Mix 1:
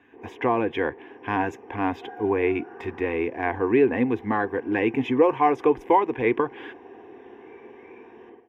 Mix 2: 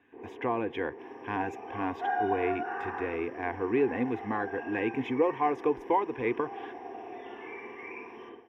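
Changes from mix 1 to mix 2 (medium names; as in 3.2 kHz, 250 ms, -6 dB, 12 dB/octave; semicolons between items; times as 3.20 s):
speech -7.5 dB; second sound +12.0 dB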